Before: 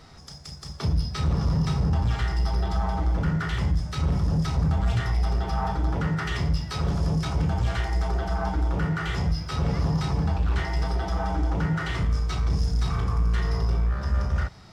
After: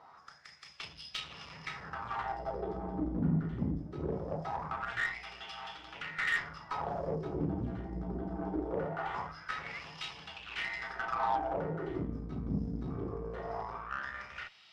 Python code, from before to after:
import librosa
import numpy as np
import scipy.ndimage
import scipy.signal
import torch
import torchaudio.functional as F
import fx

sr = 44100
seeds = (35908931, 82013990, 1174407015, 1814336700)

y = fx.wah_lfo(x, sr, hz=0.22, low_hz=240.0, high_hz=3000.0, q=4.0)
y = fx.cheby_harmonics(y, sr, harmonics=(6, 7), levels_db=(-26, -36), full_scale_db=-27.0)
y = y * librosa.db_to_amplitude(6.5)